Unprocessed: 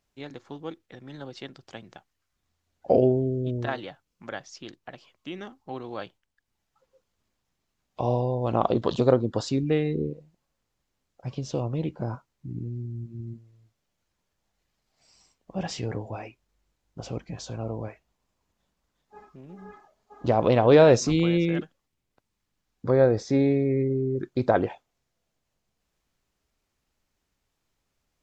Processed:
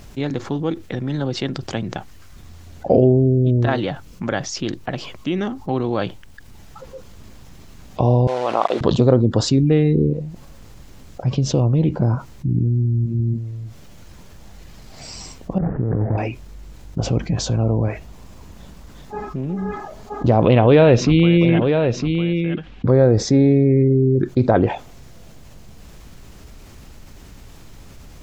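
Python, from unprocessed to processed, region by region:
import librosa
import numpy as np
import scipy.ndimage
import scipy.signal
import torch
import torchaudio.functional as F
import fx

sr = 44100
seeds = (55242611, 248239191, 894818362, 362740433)

y = fx.chain(x, sr, fx.sample_gate(floor_db=-36.0),
    fx.bandpass_edges(low_hz=730.0, high_hz=5000.0), at=(8.27, 8.81))
y = fx.chain(y, sr, fx.median_filter(points=41),
    fx.steep_lowpass(hz=1800.0, slope=48),
    fx.over_compress(threshold_db=-36.0, ratio=-1.0), at=(15.58, 16.18))
y = fx.chain(y, sr, fx.lowpass_res(hz=2900.0, q=2.4),
    fx.echo_single(ms=956, db=-12.5), at=(20.45, 22.88))
y = fx.low_shelf(y, sr, hz=330.0, db=10.5)
y = fx.env_flatten(y, sr, amount_pct=50)
y = F.gain(torch.from_numpy(y), -1.5).numpy()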